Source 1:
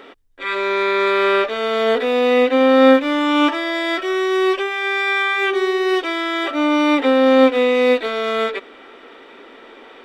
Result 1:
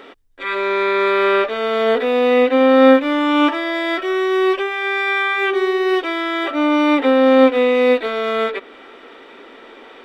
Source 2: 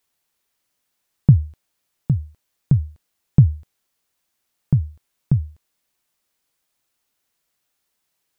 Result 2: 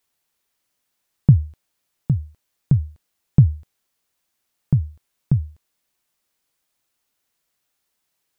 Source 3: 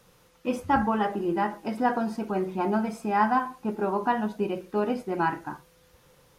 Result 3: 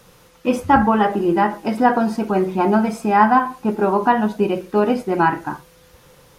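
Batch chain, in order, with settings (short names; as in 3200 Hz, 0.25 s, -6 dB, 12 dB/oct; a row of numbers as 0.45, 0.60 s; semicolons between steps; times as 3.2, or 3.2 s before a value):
dynamic EQ 6900 Hz, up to -7 dB, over -42 dBFS, Q 0.72; normalise peaks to -1.5 dBFS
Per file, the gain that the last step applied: +1.0, -0.5, +9.5 dB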